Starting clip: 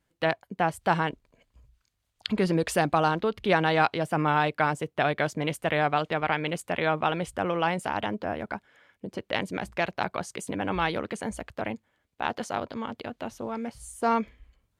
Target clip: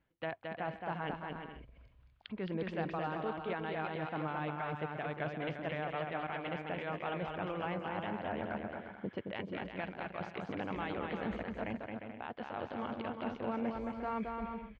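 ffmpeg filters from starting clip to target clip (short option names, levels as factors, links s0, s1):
-af "areverse,acompressor=threshold=0.0158:ratio=5,areverse,lowpass=f=3200:w=0.5412,lowpass=f=3200:w=1.3066,alimiter=level_in=1.78:limit=0.0631:level=0:latency=1:release=440,volume=0.562,aecho=1:1:220|352|431.2|478.7|507.2:0.631|0.398|0.251|0.158|0.1,volume=1.19"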